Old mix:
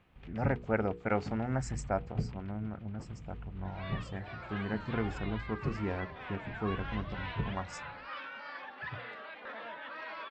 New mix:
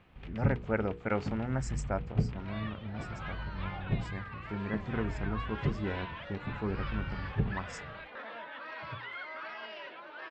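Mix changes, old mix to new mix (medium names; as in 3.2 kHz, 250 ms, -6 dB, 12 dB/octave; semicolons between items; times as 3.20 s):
speech: add peaking EQ 730 Hz -6 dB 0.28 oct; first sound +5.0 dB; second sound: entry -1.30 s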